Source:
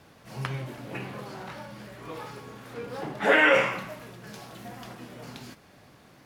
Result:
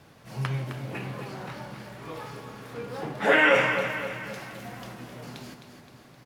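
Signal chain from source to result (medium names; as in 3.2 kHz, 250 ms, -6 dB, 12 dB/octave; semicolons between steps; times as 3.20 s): peaking EQ 130 Hz +4.5 dB 0.51 oct; on a send: feedback delay 261 ms, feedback 50%, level -8.5 dB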